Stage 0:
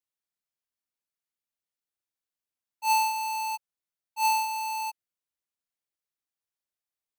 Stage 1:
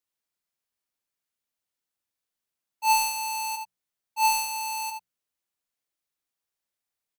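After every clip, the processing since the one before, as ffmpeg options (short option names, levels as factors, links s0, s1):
-af "bandreject=f=60:t=h:w=6,bandreject=f=120:t=h:w=6,bandreject=f=180:t=h:w=6,aeval=exprs='0.1*(cos(1*acos(clip(val(0)/0.1,-1,1)))-cos(1*PI/2))+0.00112*(cos(2*acos(clip(val(0)/0.1,-1,1)))-cos(2*PI/2))':c=same,aecho=1:1:78:0.447,volume=1.5"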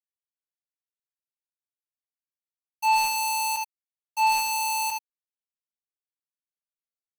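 -filter_complex "[0:a]acrossover=split=360|1100|4400[s0][s1][s2][s3];[s3]alimiter=level_in=1.88:limit=0.0631:level=0:latency=1,volume=0.531[s4];[s0][s1][s2][s4]amix=inputs=4:normalize=0,acrusher=bits=5:mix=0:aa=0.5,asoftclip=type=tanh:threshold=0.0794,volume=1.78"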